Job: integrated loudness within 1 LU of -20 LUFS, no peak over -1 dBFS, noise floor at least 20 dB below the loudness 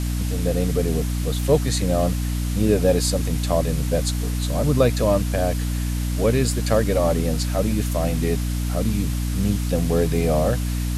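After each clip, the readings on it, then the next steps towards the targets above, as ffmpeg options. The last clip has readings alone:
hum 60 Hz; highest harmonic 300 Hz; hum level -21 dBFS; noise floor -24 dBFS; noise floor target -42 dBFS; loudness -22.0 LUFS; peak level -5.0 dBFS; loudness target -20.0 LUFS
-> -af "bandreject=f=60:t=h:w=4,bandreject=f=120:t=h:w=4,bandreject=f=180:t=h:w=4,bandreject=f=240:t=h:w=4,bandreject=f=300:t=h:w=4"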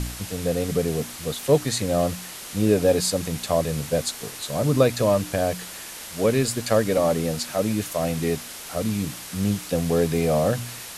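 hum not found; noise floor -38 dBFS; noise floor target -44 dBFS
-> -af "afftdn=nr=6:nf=-38"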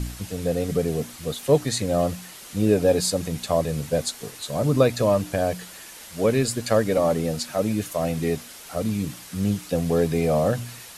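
noise floor -43 dBFS; noise floor target -44 dBFS
-> -af "afftdn=nr=6:nf=-43"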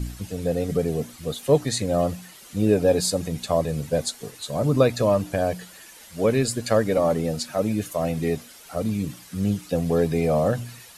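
noise floor -47 dBFS; loudness -24.0 LUFS; peak level -6.5 dBFS; loudness target -20.0 LUFS
-> -af "volume=1.58"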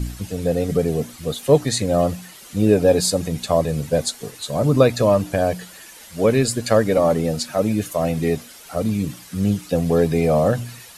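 loudness -20.0 LUFS; peak level -2.5 dBFS; noise floor -43 dBFS

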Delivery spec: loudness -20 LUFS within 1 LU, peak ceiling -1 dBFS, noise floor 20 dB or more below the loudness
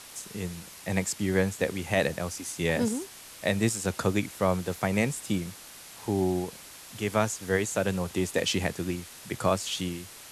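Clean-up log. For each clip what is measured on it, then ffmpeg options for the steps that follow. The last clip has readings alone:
noise floor -47 dBFS; noise floor target -50 dBFS; loudness -29.5 LUFS; peak level -11.0 dBFS; loudness target -20.0 LUFS
-> -af "afftdn=nr=6:nf=-47"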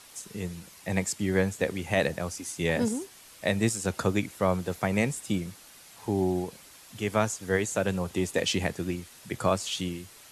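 noise floor -52 dBFS; loudness -29.5 LUFS; peak level -11.0 dBFS; loudness target -20.0 LUFS
-> -af "volume=2.99"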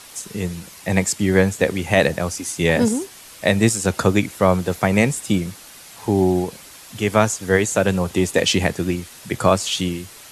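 loudness -20.0 LUFS; peak level -1.5 dBFS; noise floor -42 dBFS

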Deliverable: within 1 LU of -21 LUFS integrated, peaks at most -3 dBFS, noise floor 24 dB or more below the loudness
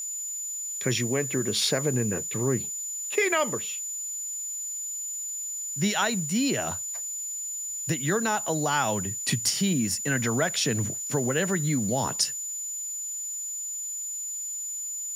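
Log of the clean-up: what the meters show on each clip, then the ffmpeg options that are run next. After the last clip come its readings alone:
steady tone 7 kHz; tone level -31 dBFS; noise floor -34 dBFS; noise floor target -51 dBFS; loudness -27.0 LUFS; peak level -10.5 dBFS; loudness target -21.0 LUFS
-> -af "bandreject=f=7000:w=30"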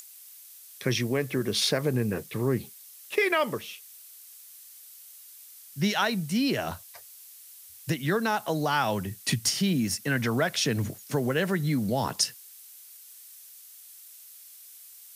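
steady tone not found; noise floor -49 dBFS; noise floor target -52 dBFS
-> -af "afftdn=nr=6:nf=-49"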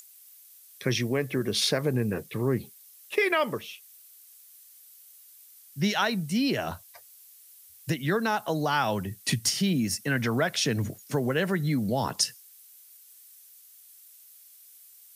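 noise floor -53 dBFS; loudness -27.5 LUFS; peak level -10.5 dBFS; loudness target -21.0 LUFS
-> -af "volume=2.11"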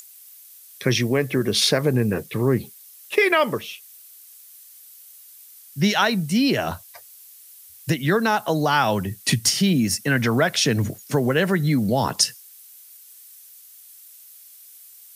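loudness -21.0 LUFS; peak level -4.0 dBFS; noise floor -47 dBFS

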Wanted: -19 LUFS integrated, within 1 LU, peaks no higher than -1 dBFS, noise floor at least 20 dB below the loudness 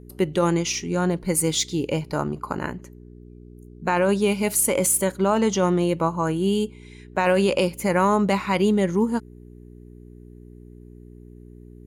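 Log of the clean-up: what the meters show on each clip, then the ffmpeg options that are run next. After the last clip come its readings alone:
hum 60 Hz; highest harmonic 420 Hz; hum level -41 dBFS; loudness -22.5 LUFS; peak level -9.0 dBFS; loudness target -19.0 LUFS
-> -af "bandreject=f=60:t=h:w=4,bandreject=f=120:t=h:w=4,bandreject=f=180:t=h:w=4,bandreject=f=240:t=h:w=4,bandreject=f=300:t=h:w=4,bandreject=f=360:t=h:w=4,bandreject=f=420:t=h:w=4"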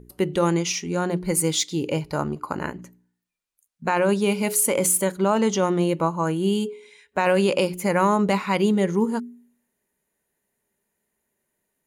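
hum not found; loudness -22.5 LUFS; peak level -8.5 dBFS; loudness target -19.0 LUFS
-> -af "volume=1.5"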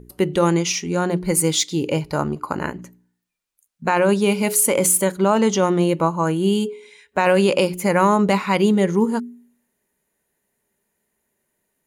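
loudness -19.0 LUFS; peak level -5.0 dBFS; noise floor -75 dBFS

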